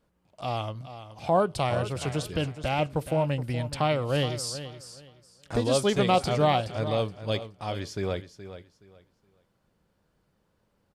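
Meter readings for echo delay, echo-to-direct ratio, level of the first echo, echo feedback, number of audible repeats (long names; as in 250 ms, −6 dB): 422 ms, −12.5 dB, −12.5 dB, 23%, 2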